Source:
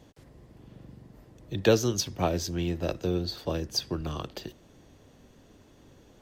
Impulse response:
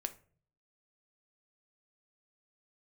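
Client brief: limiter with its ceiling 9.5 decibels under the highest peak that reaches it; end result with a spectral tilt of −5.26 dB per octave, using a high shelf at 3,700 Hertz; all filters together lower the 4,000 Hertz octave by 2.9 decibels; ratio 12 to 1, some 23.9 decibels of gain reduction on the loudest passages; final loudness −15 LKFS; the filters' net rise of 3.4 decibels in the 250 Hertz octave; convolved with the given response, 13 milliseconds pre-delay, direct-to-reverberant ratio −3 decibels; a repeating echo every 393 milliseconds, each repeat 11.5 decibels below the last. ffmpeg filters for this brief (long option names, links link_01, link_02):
-filter_complex "[0:a]equalizer=frequency=250:width_type=o:gain=5,highshelf=frequency=3700:gain=3,equalizer=frequency=4000:width_type=o:gain=-6,acompressor=threshold=-38dB:ratio=12,alimiter=level_in=12dB:limit=-24dB:level=0:latency=1,volume=-12dB,aecho=1:1:393|786|1179:0.266|0.0718|0.0194,asplit=2[link_01][link_02];[1:a]atrim=start_sample=2205,adelay=13[link_03];[link_02][link_03]afir=irnorm=-1:irlink=0,volume=4dB[link_04];[link_01][link_04]amix=inputs=2:normalize=0,volume=28dB"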